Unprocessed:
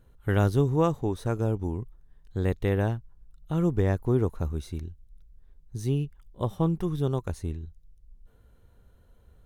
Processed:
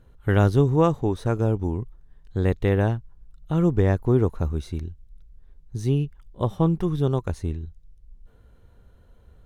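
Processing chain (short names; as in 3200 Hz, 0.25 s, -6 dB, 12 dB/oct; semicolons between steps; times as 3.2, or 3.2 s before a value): high shelf 8900 Hz -10 dB; gain +4.5 dB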